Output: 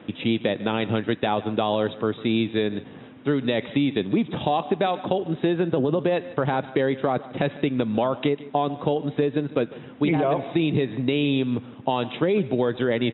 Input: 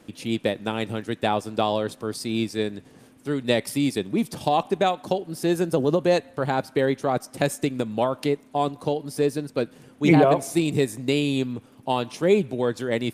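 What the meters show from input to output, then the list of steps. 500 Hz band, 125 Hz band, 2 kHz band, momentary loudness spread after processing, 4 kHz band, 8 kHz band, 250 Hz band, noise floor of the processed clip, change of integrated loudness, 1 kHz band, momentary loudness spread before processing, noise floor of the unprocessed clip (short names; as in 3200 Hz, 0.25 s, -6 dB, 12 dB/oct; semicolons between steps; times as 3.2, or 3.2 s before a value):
-0.5 dB, +0.5 dB, 0.0 dB, 4 LU, 0.0 dB, under -40 dB, +1.0 dB, -44 dBFS, 0.0 dB, -1.0 dB, 8 LU, -53 dBFS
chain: HPF 86 Hz; limiter -16 dBFS, peak gain reduction 11.5 dB; compressor, threshold -26 dBFS, peak gain reduction 6.5 dB; brick-wall FIR low-pass 3900 Hz; on a send: echo 0.15 s -18 dB; on the sum: gain +8 dB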